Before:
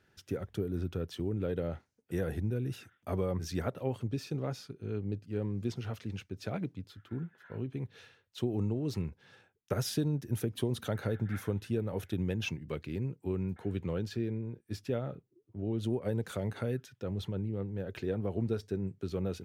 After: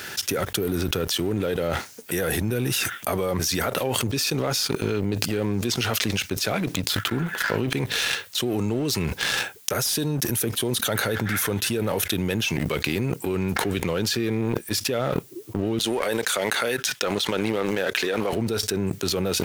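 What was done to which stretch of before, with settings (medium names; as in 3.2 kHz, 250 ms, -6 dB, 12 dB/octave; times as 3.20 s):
15.79–18.33 s: frequency weighting A
whole clip: tilt EQ +3.5 dB/octave; waveshaping leveller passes 2; level flattener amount 100%; trim -3 dB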